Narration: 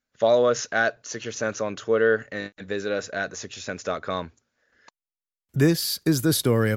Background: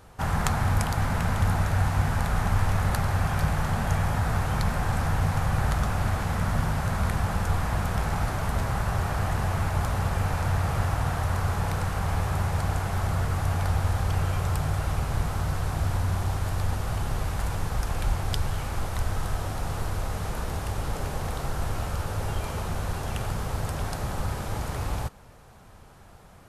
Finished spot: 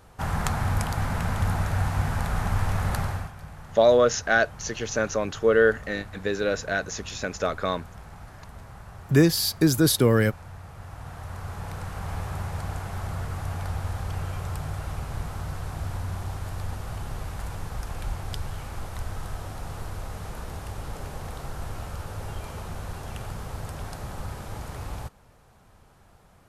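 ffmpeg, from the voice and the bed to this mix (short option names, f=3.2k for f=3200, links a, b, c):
-filter_complex "[0:a]adelay=3550,volume=1.5dB[a];[1:a]volume=10dB,afade=t=out:st=3.02:d=0.3:silence=0.16788,afade=t=in:st=10.77:d=1.38:silence=0.266073[b];[a][b]amix=inputs=2:normalize=0"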